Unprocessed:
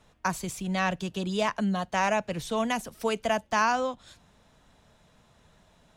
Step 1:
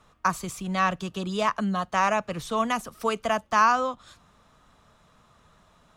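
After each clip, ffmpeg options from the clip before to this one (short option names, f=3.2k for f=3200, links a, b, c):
-af "equalizer=f=1.2k:w=4.4:g=12.5"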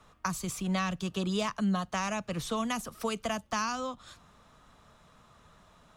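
-filter_complex "[0:a]acrossover=split=250|3000[a][b][c];[b]acompressor=threshold=-32dB:ratio=6[d];[a][d][c]amix=inputs=3:normalize=0"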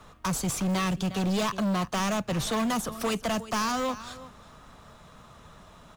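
-filter_complex "[0:a]asplit=2[a][b];[b]acrusher=samples=15:mix=1:aa=0.000001:lfo=1:lforange=9:lforate=0.4,volume=-12dB[c];[a][c]amix=inputs=2:normalize=0,aecho=1:1:359:0.112,asoftclip=type=hard:threshold=-31.5dB,volume=7dB"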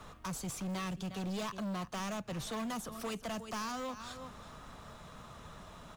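-af "alimiter=level_in=11.5dB:limit=-24dB:level=0:latency=1:release=200,volume=-11.5dB"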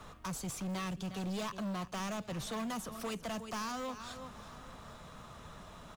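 -af "aecho=1:1:832:0.0944"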